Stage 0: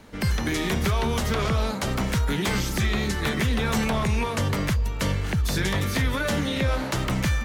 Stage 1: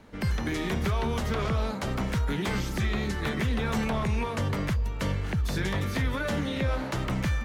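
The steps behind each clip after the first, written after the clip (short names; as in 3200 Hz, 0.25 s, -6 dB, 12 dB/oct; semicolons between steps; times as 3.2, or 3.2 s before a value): high shelf 3700 Hz -7.5 dB; gain -3.5 dB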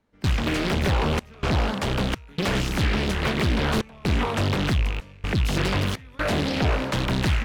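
rattling part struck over -33 dBFS, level -25 dBFS; step gate ".xxxx.xxx.xxxxxx" 63 bpm -24 dB; Doppler distortion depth 0.99 ms; gain +5.5 dB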